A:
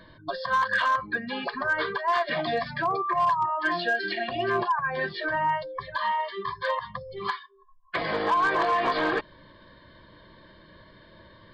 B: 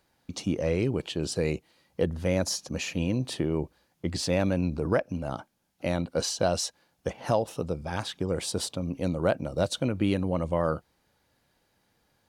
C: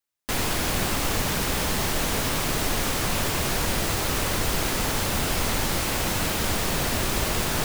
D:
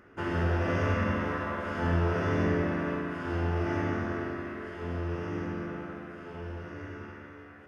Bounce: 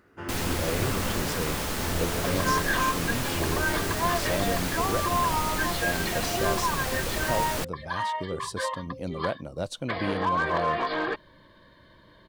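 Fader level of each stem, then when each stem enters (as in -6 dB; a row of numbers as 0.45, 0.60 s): -3.0, -5.5, -5.5, -4.5 dB; 1.95, 0.00, 0.00, 0.00 s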